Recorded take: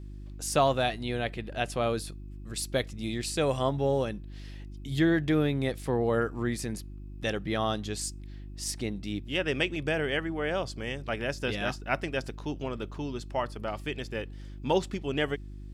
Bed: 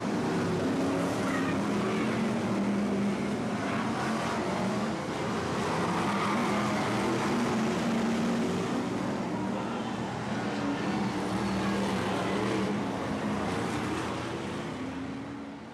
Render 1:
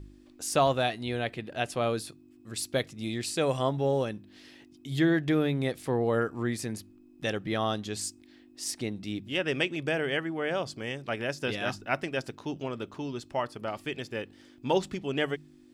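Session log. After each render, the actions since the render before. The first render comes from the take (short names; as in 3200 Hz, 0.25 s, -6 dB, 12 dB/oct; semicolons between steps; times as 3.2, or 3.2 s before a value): de-hum 50 Hz, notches 4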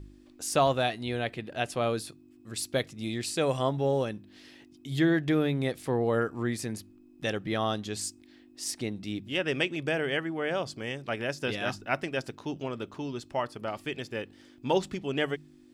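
nothing audible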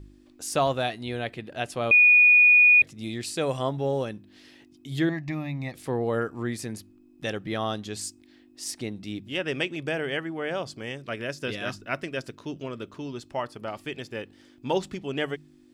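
1.91–2.82 bleep 2460 Hz -12.5 dBFS; 5.09–5.74 fixed phaser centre 2200 Hz, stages 8; 10.98–13.06 bell 810 Hz -11 dB 0.23 oct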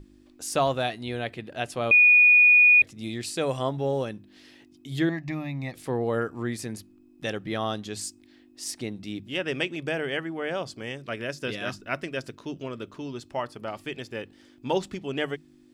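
notches 50/100/150 Hz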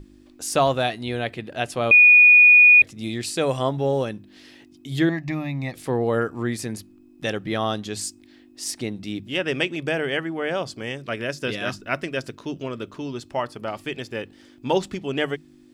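gain +4.5 dB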